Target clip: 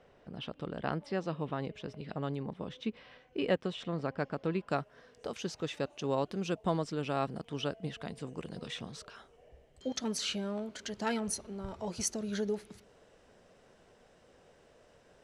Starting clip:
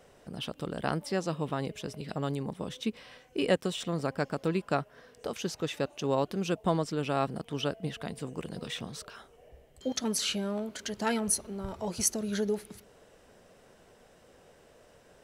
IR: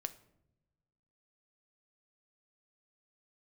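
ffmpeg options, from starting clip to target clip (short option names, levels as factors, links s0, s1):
-af "asetnsamples=n=441:p=0,asendcmd='4.68 lowpass f 7500',lowpass=3500,volume=0.668"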